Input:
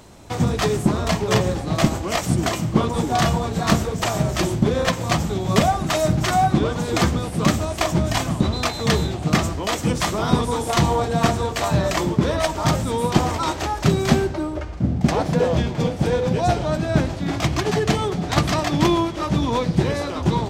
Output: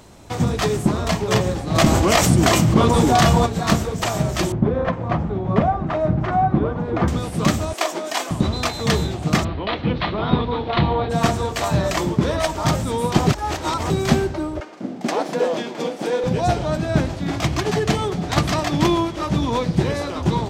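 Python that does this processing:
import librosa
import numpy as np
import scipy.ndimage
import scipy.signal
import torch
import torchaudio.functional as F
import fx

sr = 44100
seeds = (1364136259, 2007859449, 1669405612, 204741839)

y = fx.env_flatten(x, sr, amount_pct=70, at=(1.74, 3.45), fade=0.02)
y = fx.lowpass(y, sr, hz=1400.0, slope=12, at=(4.52, 7.08))
y = fx.highpass(y, sr, hz=340.0, slope=24, at=(7.73, 8.31))
y = fx.cheby1_lowpass(y, sr, hz=4100.0, order=5, at=(9.43, 11.09), fade=0.02)
y = fx.highpass(y, sr, hz=250.0, slope=24, at=(14.6, 16.24))
y = fx.edit(y, sr, fx.reverse_span(start_s=13.27, length_s=0.63), tone=tone)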